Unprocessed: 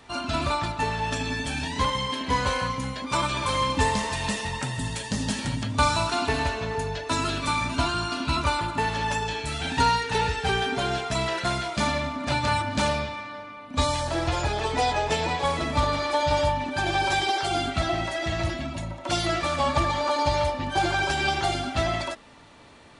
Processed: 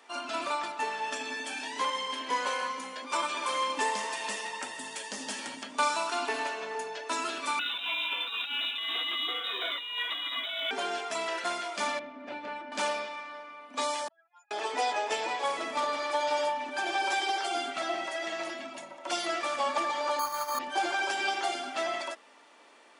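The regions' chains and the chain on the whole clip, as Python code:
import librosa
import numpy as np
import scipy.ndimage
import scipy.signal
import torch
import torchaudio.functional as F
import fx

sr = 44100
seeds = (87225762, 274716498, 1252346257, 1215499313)

y = fx.chain(x, sr, fx.steep_highpass(hz=160.0, slope=36),
    fx.echo_single(ms=314, db=-16.0), at=(1.36, 3.82))
y = fx.chain(y, sr, fx.freq_invert(carrier_hz=3800),
    fx.over_compress(threshold_db=-28.0, ratio=-1.0),
    fx.quant_float(bits=4), at=(7.59, 10.71))
y = fx.chain(y, sr, fx.lowpass(hz=1800.0, slope=12),
    fx.peak_eq(hz=1100.0, db=-11.0, octaves=1.4), at=(11.99, 12.72))
y = fx.chain(y, sr, fx.spec_expand(power=3.5),
    fx.ladder_highpass(hz=1700.0, resonance_pct=50),
    fx.transformer_sat(knee_hz=1100.0), at=(14.08, 14.51))
y = fx.chain(y, sr, fx.curve_eq(hz=(120.0, 330.0, 800.0, 1100.0, 2100.0), db=(0, -15, -14, 3, -11)),
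    fx.resample_bad(factor=8, down='filtered', up='hold'),
    fx.env_flatten(amount_pct=100), at=(20.19, 20.59))
y = scipy.signal.sosfilt(scipy.signal.bessel(6, 430.0, 'highpass', norm='mag', fs=sr, output='sos'), y)
y = fx.peak_eq(y, sr, hz=4000.0, db=-6.5, octaves=0.22)
y = F.gain(torch.from_numpy(y), -4.0).numpy()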